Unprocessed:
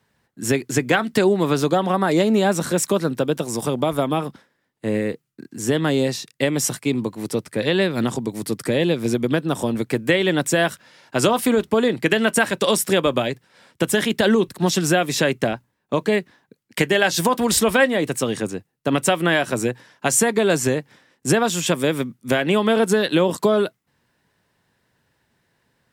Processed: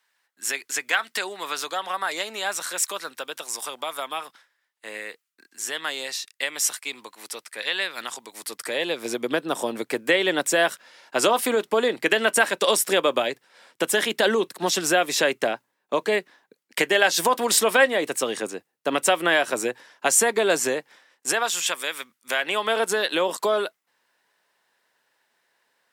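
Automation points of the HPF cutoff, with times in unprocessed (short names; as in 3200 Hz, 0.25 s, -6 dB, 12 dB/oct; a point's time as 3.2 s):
8.22 s 1200 Hz
9.32 s 430 Hz
20.64 s 430 Hz
21.98 s 1300 Hz
22.84 s 590 Hz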